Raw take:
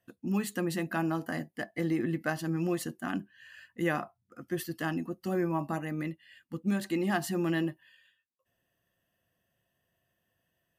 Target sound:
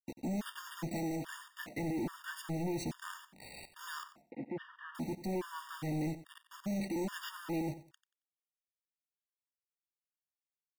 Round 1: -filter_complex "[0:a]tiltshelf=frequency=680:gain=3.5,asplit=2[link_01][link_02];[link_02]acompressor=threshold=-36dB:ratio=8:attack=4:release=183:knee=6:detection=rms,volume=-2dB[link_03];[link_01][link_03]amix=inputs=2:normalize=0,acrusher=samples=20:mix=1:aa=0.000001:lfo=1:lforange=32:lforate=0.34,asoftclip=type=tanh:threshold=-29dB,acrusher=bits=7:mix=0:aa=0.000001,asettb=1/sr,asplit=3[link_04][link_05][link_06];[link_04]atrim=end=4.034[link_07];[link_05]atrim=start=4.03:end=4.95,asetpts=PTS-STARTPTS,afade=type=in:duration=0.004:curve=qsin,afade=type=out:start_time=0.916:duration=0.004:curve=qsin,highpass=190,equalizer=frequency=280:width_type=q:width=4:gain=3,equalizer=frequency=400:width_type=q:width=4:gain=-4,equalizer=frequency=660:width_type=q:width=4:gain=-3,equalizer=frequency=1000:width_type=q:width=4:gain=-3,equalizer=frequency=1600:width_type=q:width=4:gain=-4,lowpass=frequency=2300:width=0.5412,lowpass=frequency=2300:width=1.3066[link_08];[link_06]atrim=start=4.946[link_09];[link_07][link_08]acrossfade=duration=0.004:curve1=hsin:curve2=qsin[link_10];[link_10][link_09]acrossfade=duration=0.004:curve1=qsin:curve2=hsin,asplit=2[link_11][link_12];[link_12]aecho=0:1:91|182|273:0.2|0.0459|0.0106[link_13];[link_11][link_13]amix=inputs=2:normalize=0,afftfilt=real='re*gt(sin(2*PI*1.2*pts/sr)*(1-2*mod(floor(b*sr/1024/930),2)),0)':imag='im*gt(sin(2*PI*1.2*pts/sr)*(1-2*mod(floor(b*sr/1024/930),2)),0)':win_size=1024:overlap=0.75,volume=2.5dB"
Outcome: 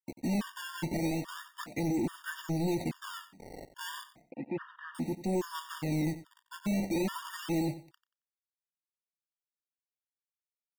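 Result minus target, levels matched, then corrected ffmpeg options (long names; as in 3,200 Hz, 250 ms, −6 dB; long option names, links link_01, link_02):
sample-and-hold swept by an LFO: distortion +12 dB; soft clipping: distortion −5 dB
-filter_complex "[0:a]tiltshelf=frequency=680:gain=3.5,asplit=2[link_01][link_02];[link_02]acompressor=threshold=-36dB:ratio=8:attack=4:release=183:knee=6:detection=rms,volume=-2dB[link_03];[link_01][link_03]amix=inputs=2:normalize=0,acrusher=samples=4:mix=1:aa=0.000001:lfo=1:lforange=6.4:lforate=0.34,asoftclip=type=tanh:threshold=-37dB,acrusher=bits=7:mix=0:aa=0.000001,asettb=1/sr,asplit=3[link_04][link_05][link_06];[link_04]atrim=end=4.034[link_07];[link_05]atrim=start=4.03:end=4.95,asetpts=PTS-STARTPTS,afade=type=in:duration=0.004:curve=qsin,afade=type=out:start_time=0.916:duration=0.004:curve=qsin,highpass=190,equalizer=frequency=280:width_type=q:width=4:gain=3,equalizer=frequency=400:width_type=q:width=4:gain=-4,equalizer=frequency=660:width_type=q:width=4:gain=-3,equalizer=frequency=1000:width_type=q:width=4:gain=-3,equalizer=frequency=1600:width_type=q:width=4:gain=-4,lowpass=frequency=2300:width=0.5412,lowpass=frequency=2300:width=1.3066[link_08];[link_06]atrim=start=4.946[link_09];[link_07][link_08]acrossfade=duration=0.004:curve1=hsin:curve2=qsin[link_10];[link_10][link_09]acrossfade=duration=0.004:curve1=qsin:curve2=hsin,asplit=2[link_11][link_12];[link_12]aecho=0:1:91|182|273:0.2|0.0459|0.0106[link_13];[link_11][link_13]amix=inputs=2:normalize=0,afftfilt=real='re*gt(sin(2*PI*1.2*pts/sr)*(1-2*mod(floor(b*sr/1024/930),2)),0)':imag='im*gt(sin(2*PI*1.2*pts/sr)*(1-2*mod(floor(b*sr/1024/930),2)),0)':win_size=1024:overlap=0.75,volume=2.5dB"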